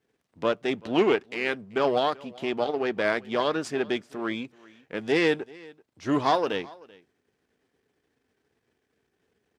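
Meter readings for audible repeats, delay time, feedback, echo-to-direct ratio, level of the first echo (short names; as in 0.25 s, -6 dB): 1, 0.385 s, no steady repeat, -23.0 dB, -23.0 dB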